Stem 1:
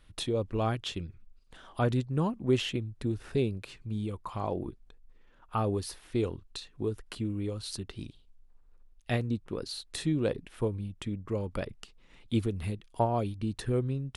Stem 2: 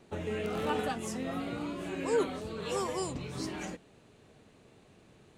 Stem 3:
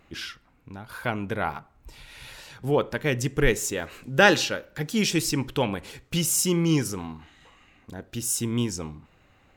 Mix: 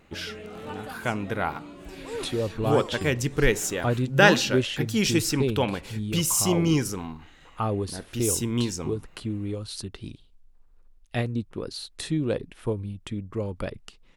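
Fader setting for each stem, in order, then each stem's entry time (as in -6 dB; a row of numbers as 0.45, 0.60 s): +2.5, -6.0, 0.0 dB; 2.05, 0.00, 0.00 s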